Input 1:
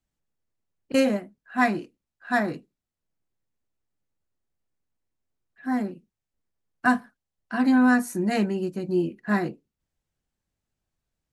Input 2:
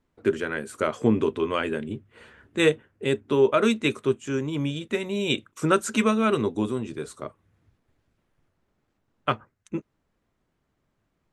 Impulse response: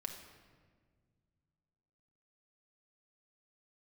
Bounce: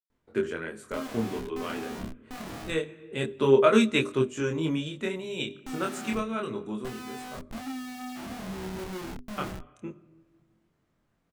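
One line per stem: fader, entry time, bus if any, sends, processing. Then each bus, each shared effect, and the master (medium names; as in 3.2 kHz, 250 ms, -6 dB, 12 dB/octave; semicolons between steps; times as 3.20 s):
-5.5 dB, 0.00 s, no send, peaking EQ 250 Hz +10 dB 0.96 oct; feedback comb 63 Hz, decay 1.5 s, harmonics all, mix 80%; Schmitt trigger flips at -37.5 dBFS
+2.5 dB, 0.10 s, send -16 dB, auto duck -12 dB, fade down 1.00 s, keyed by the first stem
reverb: on, RT60 1.7 s, pre-delay 5 ms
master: hum notches 50/100/150/200/250/300/350/400 Hz; chorus 0.27 Hz, depth 5.1 ms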